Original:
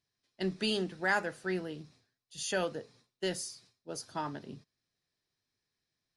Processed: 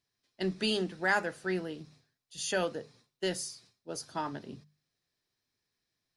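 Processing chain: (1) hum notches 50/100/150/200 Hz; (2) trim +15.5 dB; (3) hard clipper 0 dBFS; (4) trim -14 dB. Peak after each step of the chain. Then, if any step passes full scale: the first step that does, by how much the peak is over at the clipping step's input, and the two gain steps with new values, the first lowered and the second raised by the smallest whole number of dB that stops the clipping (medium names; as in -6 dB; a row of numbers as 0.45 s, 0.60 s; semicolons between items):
-17.5 dBFS, -2.0 dBFS, -2.0 dBFS, -16.0 dBFS; nothing clips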